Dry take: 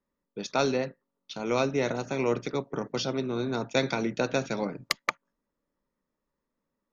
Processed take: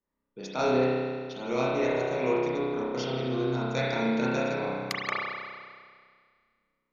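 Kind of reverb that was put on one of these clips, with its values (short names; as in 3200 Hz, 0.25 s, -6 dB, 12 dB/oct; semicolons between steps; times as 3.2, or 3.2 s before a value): spring tank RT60 1.9 s, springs 31 ms, chirp 50 ms, DRR -7.5 dB; gain -7 dB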